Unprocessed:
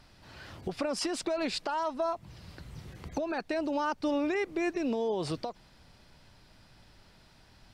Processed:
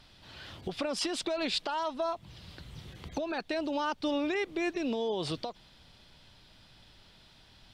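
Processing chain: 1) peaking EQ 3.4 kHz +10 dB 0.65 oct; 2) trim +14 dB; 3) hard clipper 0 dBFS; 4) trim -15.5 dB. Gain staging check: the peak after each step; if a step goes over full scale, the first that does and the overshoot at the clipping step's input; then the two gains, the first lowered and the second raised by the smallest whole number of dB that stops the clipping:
-17.5 dBFS, -3.5 dBFS, -3.5 dBFS, -19.0 dBFS; nothing clips

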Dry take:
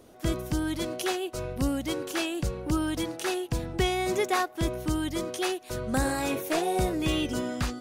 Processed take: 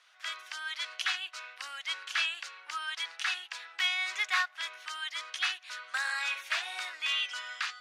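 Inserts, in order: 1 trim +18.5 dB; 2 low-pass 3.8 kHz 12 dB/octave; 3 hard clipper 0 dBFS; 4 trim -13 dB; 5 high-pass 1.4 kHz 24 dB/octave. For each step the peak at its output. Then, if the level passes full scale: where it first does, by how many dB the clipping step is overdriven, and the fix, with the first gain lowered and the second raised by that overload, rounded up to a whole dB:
+4.0 dBFS, +3.5 dBFS, 0.0 dBFS, -13.0 dBFS, -16.5 dBFS; step 1, 3.5 dB; step 1 +14.5 dB, step 4 -9 dB

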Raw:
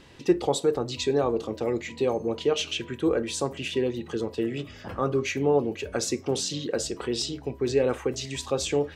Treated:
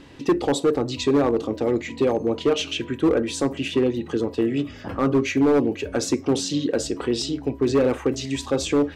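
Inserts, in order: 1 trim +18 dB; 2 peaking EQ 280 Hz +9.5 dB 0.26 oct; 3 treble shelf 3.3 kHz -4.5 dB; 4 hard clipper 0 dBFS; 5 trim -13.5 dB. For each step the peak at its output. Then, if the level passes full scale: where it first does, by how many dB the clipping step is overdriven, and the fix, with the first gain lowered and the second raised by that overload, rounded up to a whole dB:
+8.5 dBFS, +9.5 dBFS, +9.5 dBFS, 0.0 dBFS, -13.5 dBFS; step 1, 9.5 dB; step 1 +8 dB, step 5 -3.5 dB

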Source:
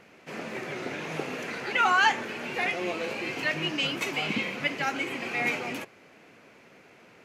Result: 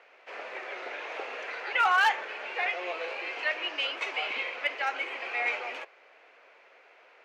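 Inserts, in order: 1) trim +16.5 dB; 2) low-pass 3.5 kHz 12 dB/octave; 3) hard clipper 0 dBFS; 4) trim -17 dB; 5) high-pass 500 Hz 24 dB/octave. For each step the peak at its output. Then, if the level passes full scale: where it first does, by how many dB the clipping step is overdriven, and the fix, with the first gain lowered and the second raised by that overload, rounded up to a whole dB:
+7.0 dBFS, +7.0 dBFS, 0.0 dBFS, -17.0 dBFS, -13.0 dBFS; step 1, 7.0 dB; step 1 +9.5 dB, step 4 -10 dB

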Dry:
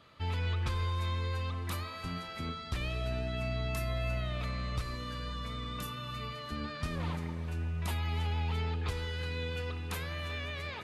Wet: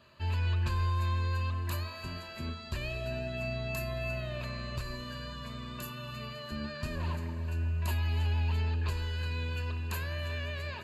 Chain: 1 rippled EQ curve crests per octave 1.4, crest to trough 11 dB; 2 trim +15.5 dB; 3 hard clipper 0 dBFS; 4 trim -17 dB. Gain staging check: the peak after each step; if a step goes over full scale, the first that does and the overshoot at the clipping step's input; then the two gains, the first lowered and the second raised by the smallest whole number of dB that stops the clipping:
-20.0 dBFS, -4.5 dBFS, -4.5 dBFS, -21.5 dBFS; nothing clips

